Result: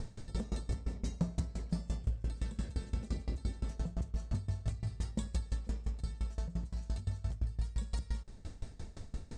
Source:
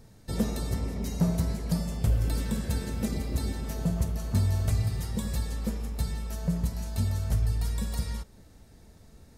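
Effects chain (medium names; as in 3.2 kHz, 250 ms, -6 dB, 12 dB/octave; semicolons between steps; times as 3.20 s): Chebyshev low-pass 8.4 kHz, order 4; bass shelf 71 Hz +10 dB; compression 5:1, threshold -40 dBFS, peak gain reduction 21.5 dB; saturation -31.5 dBFS, distortion -24 dB; sawtooth tremolo in dB decaying 5.8 Hz, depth 22 dB; trim +11.5 dB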